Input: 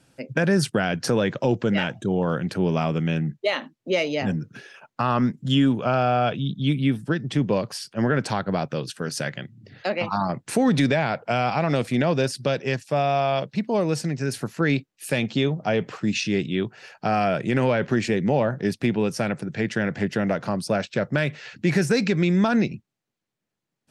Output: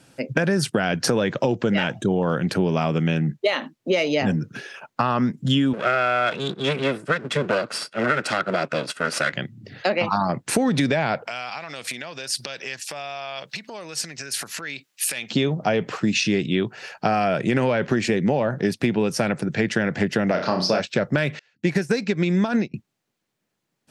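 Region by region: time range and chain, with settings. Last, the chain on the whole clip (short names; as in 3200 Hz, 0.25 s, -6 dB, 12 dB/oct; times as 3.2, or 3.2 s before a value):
5.73–9.33 minimum comb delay 1.5 ms + speaker cabinet 230–9500 Hz, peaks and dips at 780 Hz -7 dB, 1500 Hz +8 dB, 2500 Hz +4 dB, 6200 Hz -4 dB
11.27–15.31 compressor 12:1, threshold -35 dBFS + tilt shelf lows -10 dB, about 820 Hz
20.31–20.8 HPF 200 Hz 6 dB/oct + resonant high shelf 6700 Hz -11 dB, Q 3 + flutter echo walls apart 5.6 m, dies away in 0.36 s
21.39–22.74 notch 1300 Hz, Q 26 + upward expander 2.5:1, over -37 dBFS
whole clip: low shelf 82 Hz -8.5 dB; compressor, threshold -24 dBFS; gain +7 dB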